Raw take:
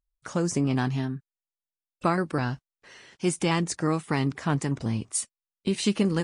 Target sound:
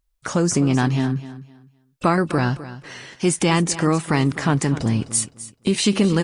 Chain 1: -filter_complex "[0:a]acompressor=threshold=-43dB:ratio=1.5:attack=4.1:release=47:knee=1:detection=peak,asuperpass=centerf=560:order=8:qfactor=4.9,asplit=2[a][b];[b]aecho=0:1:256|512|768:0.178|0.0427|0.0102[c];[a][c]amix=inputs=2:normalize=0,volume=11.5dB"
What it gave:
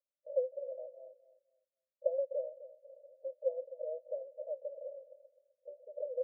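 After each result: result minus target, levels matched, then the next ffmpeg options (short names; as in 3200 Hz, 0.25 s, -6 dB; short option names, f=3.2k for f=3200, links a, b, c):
500 Hz band +8.0 dB; compressor: peak gain reduction +2.5 dB
-filter_complex "[0:a]acompressor=threshold=-43dB:ratio=1.5:attack=4.1:release=47:knee=1:detection=peak,asplit=2[a][b];[b]aecho=0:1:256|512|768:0.178|0.0427|0.0102[c];[a][c]amix=inputs=2:normalize=0,volume=11.5dB"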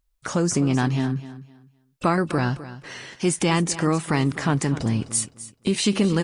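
compressor: peak gain reduction +2.5 dB
-filter_complex "[0:a]acompressor=threshold=-35dB:ratio=1.5:attack=4.1:release=47:knee=1:detection=peak,asplit=2[a][b];[b]aecho=0:1:256|512|768:0.178|0.0427|0.0102[c];[a][c]amix=inputs=2:normalize=0,volume=11.5dB"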